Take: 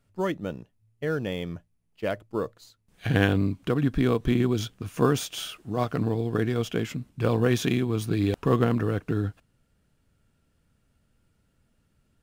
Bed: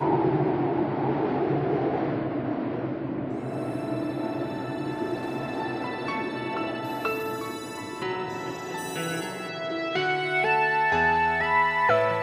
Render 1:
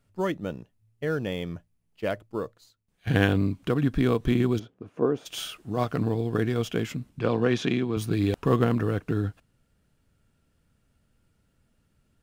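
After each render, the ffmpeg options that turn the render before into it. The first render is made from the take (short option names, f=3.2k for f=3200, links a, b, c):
-filter_complex "[0:a]asplit=3[a][b][c];[a]afade=t=out:st=4.58:d=0.02[d];[b]bandpass=f=430:t=q:w=1.1,afade=t=in:st=4.58:d=0.02,afade=t=out:st=5.25:d=0.02[e];[c]afade=t=in:st=5.25:d=0.02[f];[d][e][f]amix=inputs=3:normalize=0,asettb=1/sr,asplit=3[g][h][i];[g]atrim=end=7.194[j];[h]atrim=start=7.19:end=7.97,asetpts=PTS-STARTPTS,afade=t=in:d=0.004:c=qsin,afade=t=out:st=0.776:d=0.004:c=qsin,highpass=140,lowpass=4.8k[k];[i]atrim=start=7.966[l];[j][k]acrossfade=d=0.004:c1=hsin:c2=qsin[m];[m][l]acrossfade=d=0.004:c1=qsin:c2=hsin,asplit=2[n][o];[n]atrim=end=3.07,asetpts=PTS-STARTPTS,afade=t=out:st=2.12:d=0.95:silence=0.158489[p];[o]atrim=start=3.07,asetpts=PTS-STARTPTS,afade=t=in:d=0.004:c=hsin:silence=0.158489[q];[p][q]concat=n=2:v=0:a=1"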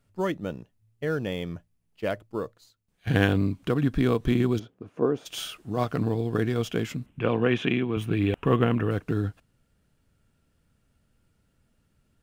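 -filter_complex "[0:a]asettb=1/sr,asplit=3[a][b][c];[a]atrim=end=7.064[d];[b]atrim=start=7.06:end=8.91,asetpts=PTS-STARTPTS,afade=t=in:d=0.004:c=qsin,afade=t=out:st=1.846:d=0.004:c=qsin,highshelf=f=3.6k:t=q:w=3:g=-7.5[e];[c]atrim=start=8.906[f];[d][e]acrossfade=d=0.004:c1=hsin:c2=qsin[g];[g][f]acrossfade=d=0.004:c1=qsin:c2=hsin"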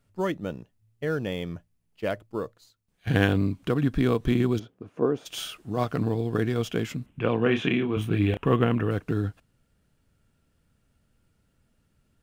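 -filter_complex "[0:a]asettb=1/sr,asplit=3[a][b][c];[a]atrim=end=7.434[d];[b]atrim=start=7.43:end=8.39,asetpts=PTS-STARTPTS,afade=t=in:d=0.004:c=qsin,afade=t=out:st=0.956:d=0.004:c=qsin,asplit=2[e][f];[f]adelay=29,volume=-7dB[g];[e][g]amix=inputs=2:normalize=0,atrim=end_sample=42336[h];[c]atrim=start=8.386[i];[d][h]acrossfade=d=0.004:c1=hsin:c2=qsin[j];[j][i]acrossfade=d=0.004:c1=qsin:c2=hsin"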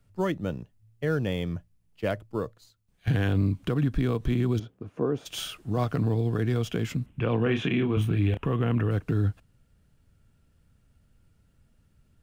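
-filter_complex "[0:a]acrossover=split=150|1100[a][b][c];[a]acontrast=80[d];[d][b][c]amix=inputs=3:normalize=0,alimiter=limit=-16.5dB:level=0:latency=1:release=109"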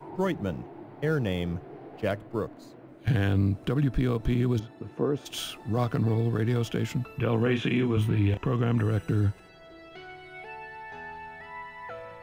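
-filter_complex "[1:a]volume=-19dB[a];[0:a][a]amix=inputs=2:normalize=0"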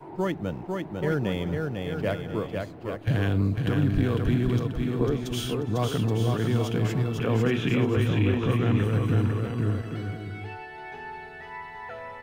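-af "aecho=1:1:500|825|1036|1174|1263:0.631|0.398|0.251|0.158|0.1"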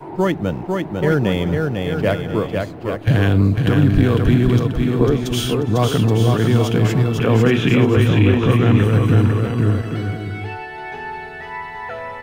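-af "volume=9.5dB"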